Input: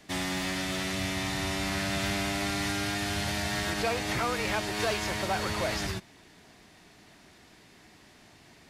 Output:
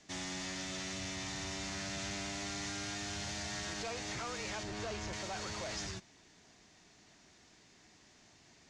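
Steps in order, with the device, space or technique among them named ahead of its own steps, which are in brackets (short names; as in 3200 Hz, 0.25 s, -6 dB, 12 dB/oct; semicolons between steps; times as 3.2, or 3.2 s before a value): 4.63–5.13 tilt -2 dB/oct; overdriven synthesiser ladder filter (soft clip -28 dBFS, distortion -13 dB; ladder low-pass 7400 Hz, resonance 55%); gain +1.5 dB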